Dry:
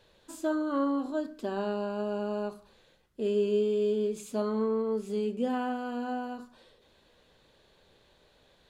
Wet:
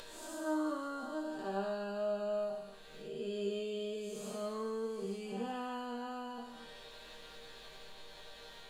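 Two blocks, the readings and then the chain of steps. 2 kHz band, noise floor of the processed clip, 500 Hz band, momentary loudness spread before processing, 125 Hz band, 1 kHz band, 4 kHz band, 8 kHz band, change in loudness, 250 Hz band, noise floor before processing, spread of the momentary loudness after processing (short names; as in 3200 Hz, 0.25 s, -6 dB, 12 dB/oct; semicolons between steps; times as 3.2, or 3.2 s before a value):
-4.0 dB, -53 dBFS, -8.0 dB, 8 LU, n/a, -5.5 dB, 0.0 dB, -1.5 dB, -8.5 dB, -9.5 dB, -64 dBFS, 15 LU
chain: time blur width 0.28 s; bell 210 Hz -8.5 dB 2.5 oct; resonator bank D#3 major, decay 0.28 s; upward compressor, threshold -54 dBFS; on a send: thin delay 0.167 s, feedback 81%, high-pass 3600 Hz, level -12 dB; on the sum: gain +15.5 dB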